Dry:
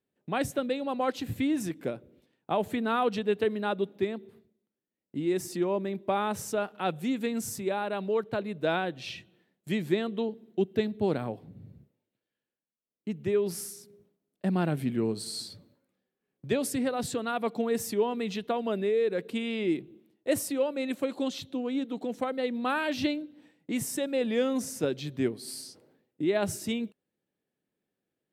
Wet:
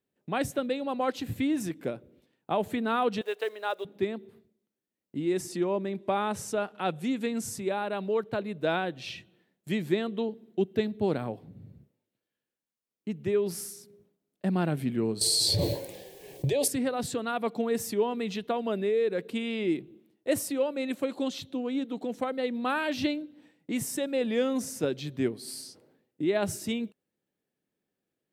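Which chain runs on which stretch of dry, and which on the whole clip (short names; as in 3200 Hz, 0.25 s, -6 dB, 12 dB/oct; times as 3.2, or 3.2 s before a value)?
3.21–3.85 block floating point 7-bit + HPF 480 Hz 24 dB/oct
5.37–7.67 LPF 12000 Hz 24 dB/oct + mismatched tape noise reduction encoder only
15.21–16.68 fixed phaser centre 550 Hz, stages 4 + fast leveller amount 100%
whole clip: dry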